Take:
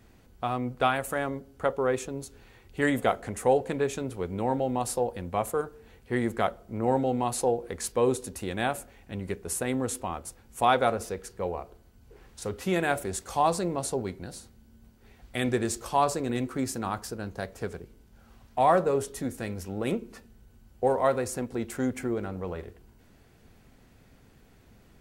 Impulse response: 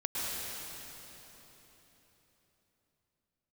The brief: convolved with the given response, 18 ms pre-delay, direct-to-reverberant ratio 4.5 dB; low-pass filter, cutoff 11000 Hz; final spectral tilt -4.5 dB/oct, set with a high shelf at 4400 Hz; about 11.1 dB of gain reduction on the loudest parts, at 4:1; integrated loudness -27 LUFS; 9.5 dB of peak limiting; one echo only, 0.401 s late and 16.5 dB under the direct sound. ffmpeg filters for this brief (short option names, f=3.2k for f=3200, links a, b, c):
-filter_complex "[0:a]lowpass=11k,highshelf=f=4.4k:g=4,acompressor=threshold=-31dB:ratio=4,alimiter=level_in=3dB:limit=-24dB:level=0:latency=1,volume=-3dB,aecho=1:1:401:0.15,asplit=2[a][b];[1:a]atrim=start_sample=2205,adelay=18[c];[b][c]afir=irnorm=-1:irlink=0,volume=-11dB[d];[a][d]amix=inputs=2:normalize=0,volume=10.5dB"